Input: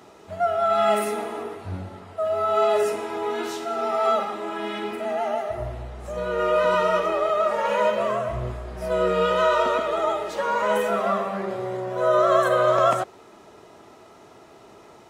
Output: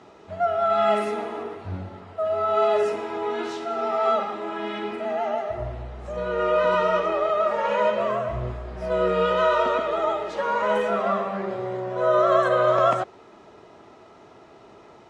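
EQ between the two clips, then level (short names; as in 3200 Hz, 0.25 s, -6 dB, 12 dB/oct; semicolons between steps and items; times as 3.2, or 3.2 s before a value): air absorption 96 m; 0.0 dB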